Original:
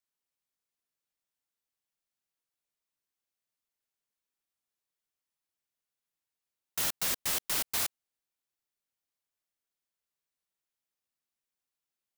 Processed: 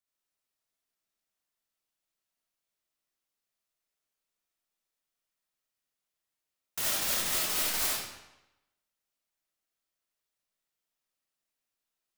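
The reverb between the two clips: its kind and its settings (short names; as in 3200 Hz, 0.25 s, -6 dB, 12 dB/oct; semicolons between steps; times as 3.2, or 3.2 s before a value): digital reverb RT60 0.94 s, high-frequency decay 0.9×, pre-delay 25 ms, DRR -4.5 dB; gain -2.5 dB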